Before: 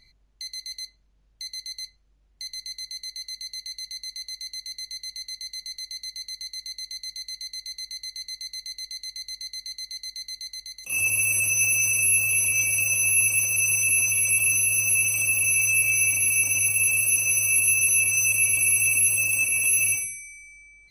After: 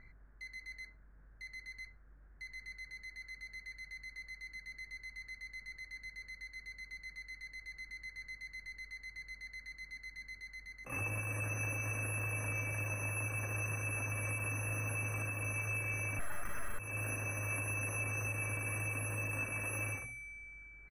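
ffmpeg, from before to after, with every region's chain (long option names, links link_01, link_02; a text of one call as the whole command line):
ffmpeg -i in.wav -filter_complex "[0:a]asettb=1/sr,asplit=3[link_01][link_02][link_03];[link_01]atrim=end=16.194[link_04];[link_02]atrim=start=16.19:end=16.79,asetpts=PTS-STARTPTS,afade=type=in:duration=0.004:curve=qsin,afade=type=out:start_time=0.596:duration=0.004:curve=qsin,aemphasis=mode=production:type=bsi,aeval=exprs='(tanh(3.55*val(0)+0.55)-tanh(0.55))/3.55':channel_layout=same[link_05];[link_03]atrim=start=16.786[link_06];[link_04][link_05]acrossfade=duration=0.004:curve1=hsin:curve2=qsin[link_07];[link_07][link_06]acrossfade=duration=0.004:curve1=qsin:curve2=hsin,firequalizer=gain_entry='entry(940,0);entry(1600,12);entry(3000,-29)':delay=0.05:min_phase=1,alimiter=level_in=9dB:limit=-24dB:level=0:latency=1:release=302,volume=-9dB,volume=4.5dB" out.wav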